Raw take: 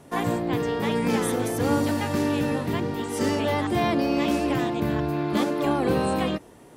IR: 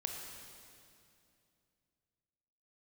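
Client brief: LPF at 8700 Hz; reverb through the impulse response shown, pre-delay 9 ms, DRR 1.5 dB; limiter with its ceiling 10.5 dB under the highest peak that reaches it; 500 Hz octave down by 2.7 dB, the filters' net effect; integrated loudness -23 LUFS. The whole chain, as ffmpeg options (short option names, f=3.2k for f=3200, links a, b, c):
-filter_complex "[0:a]lowpass=8.7k,equalizer=f=500:t=o:g=-3.5,alimiter=limit=-22.5dB:level=0:latency=1,asplit=2[a][b];[1:a]atrim=start_sample=2205,adelay=9[c];[b][c]afir=irnorm=-1:irlink=0,volume=-2dB[d];[a][d]amix=inputs=2:normalize=0,volume=5.5dB"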